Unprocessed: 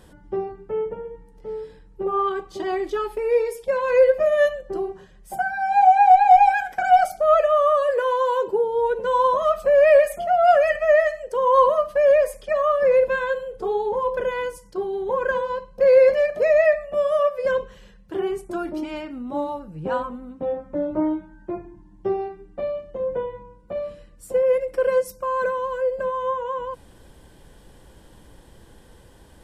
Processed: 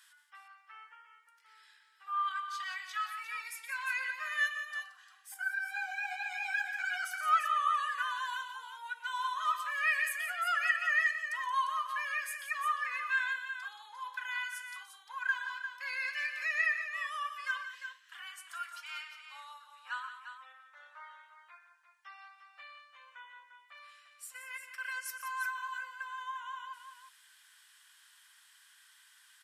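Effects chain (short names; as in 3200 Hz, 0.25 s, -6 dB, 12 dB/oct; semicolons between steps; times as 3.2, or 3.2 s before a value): steep high-pass 1300 Hz 36 dB/oct; tapped delay 0.122/0.175/0.35 s -13/-11/-9 dB; 5.34–7.12 ensemble effect; gain -2.5 dB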